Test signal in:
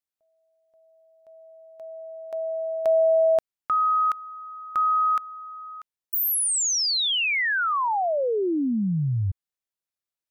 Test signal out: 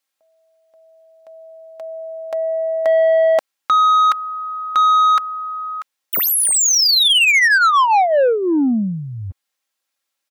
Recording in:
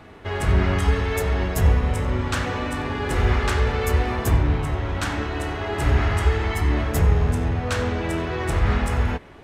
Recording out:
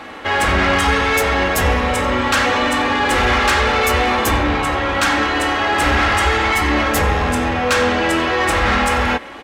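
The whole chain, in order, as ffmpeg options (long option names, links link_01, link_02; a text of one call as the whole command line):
ffmpeg -i in.wav -filter_complex "[0:a]aecho=1:1:3.7:0.52,asplit=2[link_01][link_02];[link_02]highpass=frequency=720:poles=1,volume=21dB,asoftclip=type=tanh:threshold=-5.5dB[link_03];[link_01][link_03]amix=inputs=2:normalize=0,lowpass=frequency=7400:poles=1,volume=-6dB" out.wav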